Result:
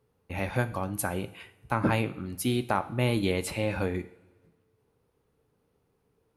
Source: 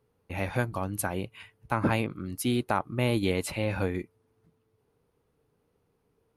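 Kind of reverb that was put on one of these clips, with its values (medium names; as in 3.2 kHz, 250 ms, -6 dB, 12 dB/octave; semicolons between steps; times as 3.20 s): two-slope reverb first 0.52 s, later 1.5 s, from -15 dB, DRR 11 dB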